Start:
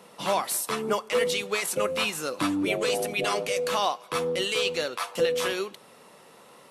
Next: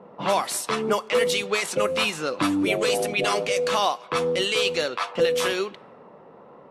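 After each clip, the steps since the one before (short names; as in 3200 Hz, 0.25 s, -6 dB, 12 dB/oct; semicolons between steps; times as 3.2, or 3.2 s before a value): low-pass opened by the level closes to 830 Hz, open at -22 dBFS; in parallel at -1.5 dB: compressor, threshold -34 dBFS, peak gain reduction 14 dB; on the sum: gain +1.5 dB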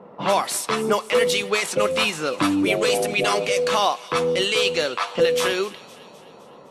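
thin delay 0.256 s, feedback 57%, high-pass 2400 Hz, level -16.5 dB; gain +2.5 dB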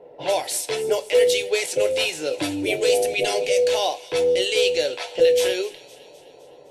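fixed phaser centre 490 Hz, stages 4; on a send at -9 dB: reverb RT60 0.25 s, pre-delay 7 ms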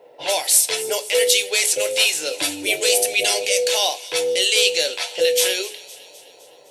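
tilt +3.5 dB/oct; notches 60/120/180/240/300/360/420 Hz; gain +1 dB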